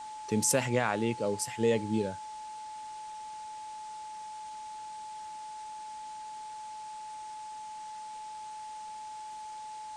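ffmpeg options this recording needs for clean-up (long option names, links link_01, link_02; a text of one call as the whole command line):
ffmpeg -i in.wav -af "bandreject=frequency=860:width=30,afwtdn=0.0025" out.wav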